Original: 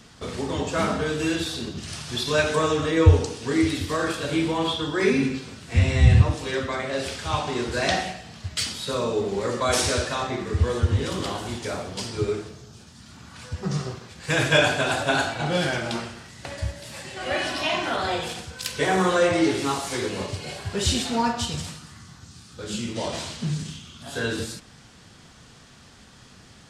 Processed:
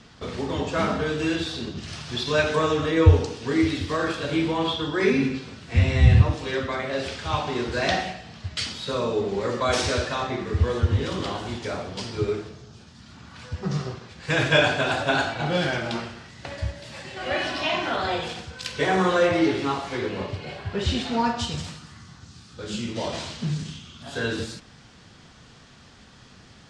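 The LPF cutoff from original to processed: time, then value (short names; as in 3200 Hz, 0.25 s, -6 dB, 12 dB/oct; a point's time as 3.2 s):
19.14 s 5300 Hz
19.92 s 3100 Hz
20.85 s 3100 Hz
21.45 s 6200 Hz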